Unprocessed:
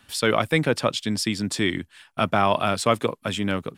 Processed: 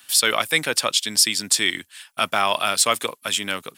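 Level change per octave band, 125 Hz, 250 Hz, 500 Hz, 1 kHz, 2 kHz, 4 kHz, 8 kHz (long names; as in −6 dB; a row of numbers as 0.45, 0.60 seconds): −13.0, −9.0, −4.0, +0.5, +4.5, +8.5, +13.5 decibels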